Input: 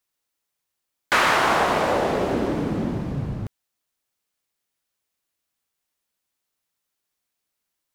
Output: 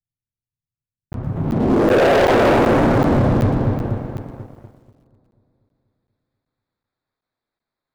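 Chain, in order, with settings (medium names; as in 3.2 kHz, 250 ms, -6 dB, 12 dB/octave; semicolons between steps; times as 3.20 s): local Wiener filter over 15 samples; in parallel at -2 dB: peak limiter -17 dBFS, peak gain reduction 9.5 dB; on the sum: low-pass sweep 120 Hz -> 3.9 kHz, 1.31–2.99 s; dynamic bell 160 Hz, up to -5 dB, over -33 dBFS, Q 1.4; on a send: filtered feedback delay 243 ms, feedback 60%, low-pass 4.6 kHz, level -5 dB; on the sum: waveshaping leveller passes 2; flange 1.4 Hz, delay 7.2 ms, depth 1.4 ms, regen -52%; hard clipper -18.5 dBFS, distortion -8 dB; crackling interface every 0.38 s, samples 512, zero, from 0.37 s; bit-crushed delay 117 ms, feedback 35%, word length 10-bit, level -14 dB; trim +6.5 dB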